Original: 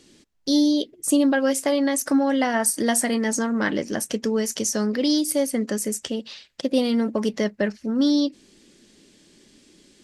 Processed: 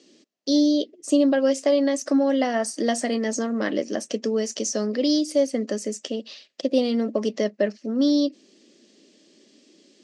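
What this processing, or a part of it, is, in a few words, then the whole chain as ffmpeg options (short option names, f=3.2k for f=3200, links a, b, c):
television speaker: -af "highpass=f=220:w=0.5412,highpass=f=220:w=1.3066,equalizer=f=600:t=q:w=4:g=5,equalizer=f=920:t=q:w=4:g=-9,equalizer=f=1.5k:t=q:w=4:g=-8,equalizer=f=2.2k:t=q:w=4:g=-4,equalizer=f=3.6k:t=q:w=4:g=-3,lowpass=f=6.7k:w=0.5412,lowpass=f=6.7k:w=1.3066"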